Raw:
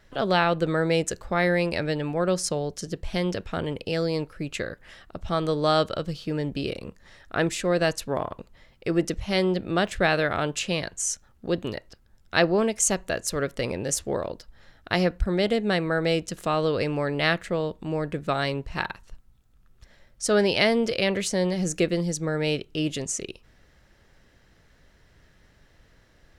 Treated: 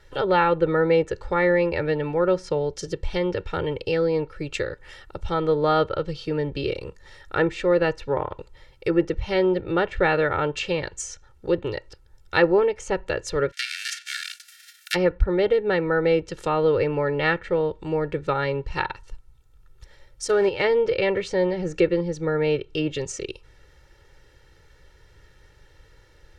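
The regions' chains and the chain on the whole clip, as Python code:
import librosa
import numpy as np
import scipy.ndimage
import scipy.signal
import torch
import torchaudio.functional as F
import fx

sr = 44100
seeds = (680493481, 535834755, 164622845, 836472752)

y = fx.envelope_flatten(x, sr, power=0.3, at=(13.51, 14.94), fade=0.02)
y = fx.cheby1_highpass(y, sr, hz=1400.0, order=8, at=(13.51, 14.94), fade=0.02)
y = fx.chain(y, sr, fx.high_shelf(hz=9200.0, db=-4.5),
    fx.level_steps(step_db=11),
    fx.quant_float(bits=2), at=(20.24, 20.64))
y = fx.env_lowpass_down(y, sr, base_hz=2200.0, full_db=-22.0)
y = y + 0.82 * np.pad(y, (int(2.2 * sr / 1000.0), 0))[:len(y)]
y = F.gain(torch.from_numpy(y), 1.0).numpy()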